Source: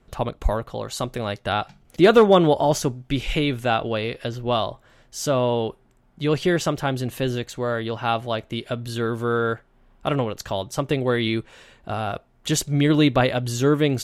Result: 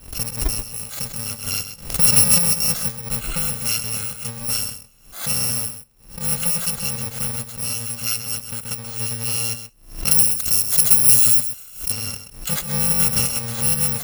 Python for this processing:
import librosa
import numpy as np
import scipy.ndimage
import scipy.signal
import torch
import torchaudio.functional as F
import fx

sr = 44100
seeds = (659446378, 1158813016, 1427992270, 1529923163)

p1 = fx.bit_reversed(x, sr, seeds[0], block=128)
p2 = fx.high_shelf(p1, sr, hz=4800.0, db=11.5, at=(10.11, 11.92))
p3 = p2 + fx.echo_single(p2, sr, ms=130, db=-10.5, dry=0)
p4 = fx.pre_swell(p3, sr, db_per_s=120.0)
y = p4 * librosa.db_to_amplitude(-1.5)